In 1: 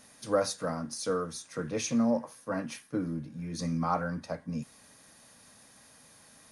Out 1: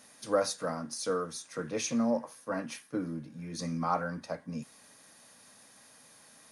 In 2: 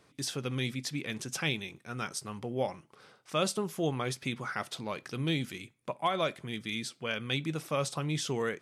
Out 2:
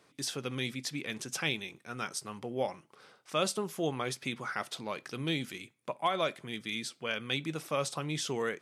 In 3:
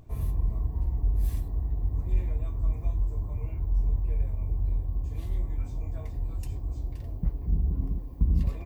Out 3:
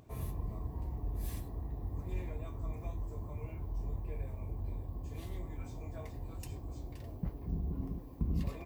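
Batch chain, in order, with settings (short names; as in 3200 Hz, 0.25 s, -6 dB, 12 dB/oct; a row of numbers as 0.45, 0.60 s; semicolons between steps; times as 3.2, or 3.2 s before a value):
HPF 210 Hz 6 dB/oct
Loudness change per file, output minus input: -1.5, -1.0, -10.5 LU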